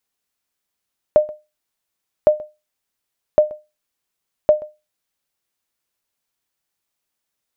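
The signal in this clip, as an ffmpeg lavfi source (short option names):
-f lavfi -i "aevalsrc='0.668*(sin(2*PI*607*mod(t,1.11))*exp(-6.91*mod(t,1.11)/0.24)+0.075*sin(2*PI*607*max(mod(t,1.11)-0.13,0))*exp(-6.91*max(mod(t,1.11)-0.13,0)/0.24))':d=4.44:s=44100"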